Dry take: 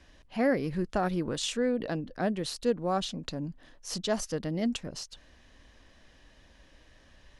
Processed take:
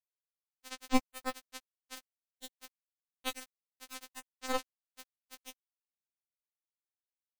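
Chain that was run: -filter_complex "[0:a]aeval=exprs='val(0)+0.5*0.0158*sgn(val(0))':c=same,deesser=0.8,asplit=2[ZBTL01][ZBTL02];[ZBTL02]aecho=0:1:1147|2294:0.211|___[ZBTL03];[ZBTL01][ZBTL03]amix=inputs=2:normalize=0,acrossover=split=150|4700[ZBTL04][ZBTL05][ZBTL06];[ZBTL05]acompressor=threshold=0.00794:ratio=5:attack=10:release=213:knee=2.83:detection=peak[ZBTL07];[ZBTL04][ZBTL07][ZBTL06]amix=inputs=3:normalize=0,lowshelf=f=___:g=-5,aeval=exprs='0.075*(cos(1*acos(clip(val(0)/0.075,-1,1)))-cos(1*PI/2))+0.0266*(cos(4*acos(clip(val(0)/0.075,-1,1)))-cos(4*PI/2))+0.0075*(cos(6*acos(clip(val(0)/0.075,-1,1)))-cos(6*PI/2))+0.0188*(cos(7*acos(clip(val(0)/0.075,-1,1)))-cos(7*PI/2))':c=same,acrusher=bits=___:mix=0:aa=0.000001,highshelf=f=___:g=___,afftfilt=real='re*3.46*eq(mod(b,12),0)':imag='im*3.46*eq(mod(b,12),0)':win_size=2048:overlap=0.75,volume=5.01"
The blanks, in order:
0.0423, 76, 4, 8.2k, -10.5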